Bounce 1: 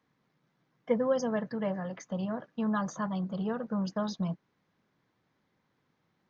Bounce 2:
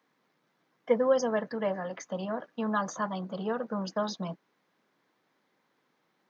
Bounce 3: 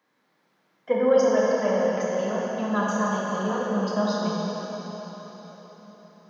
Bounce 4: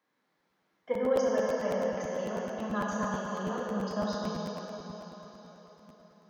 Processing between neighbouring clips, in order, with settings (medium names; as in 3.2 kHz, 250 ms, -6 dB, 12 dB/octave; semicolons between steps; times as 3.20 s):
high-pass 290 Hz 12 dB/octave; trim +4 dB
plate-style reverb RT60 4.7 s, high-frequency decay 0.9×, DRR -5.5 dB
crackling interface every 0.11 s, samples 512, repeat, from 0.38 s; trim -7.5 dB